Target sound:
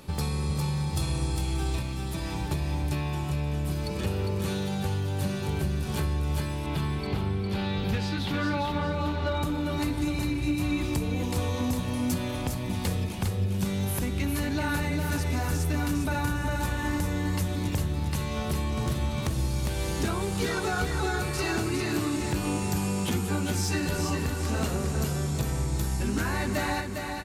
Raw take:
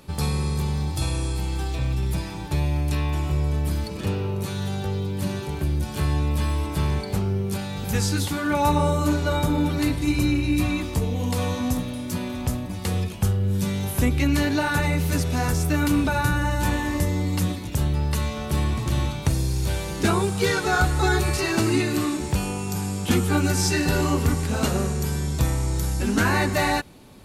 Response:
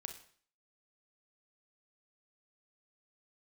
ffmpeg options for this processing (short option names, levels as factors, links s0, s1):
-filter_complex "[0:a]asettb=1/sr,asplit=3[s0][s1][s2];[s0]atrim=end=6.664[s3];[s1]atrim=start=6.66:end=9.43,asetpts=PTS-STARTPTS,afade=t=in:d=0.004:c=qsin,afade=t=out:st=2.766:d=0.004:c=qsin,highshelf=f=5300:t=q:w=1.5:g=-13.5[s4];[s2]atrim=start=9.426[s5];[s3][s4]acrossfade=d=0.004:c1=hsin:c2=qsin[s6];[s6][s5]acrossfade=d=0.004:c1=qsin:c2=hsin,acompressor=threshold=0.0501:ratio=20,asoftclip=type=hard:threshold=0.0708,aecho=1:1:405|810|1215|1620|2025:0.562|0.219|0.0855|0.0334|0.013,volume=1.12"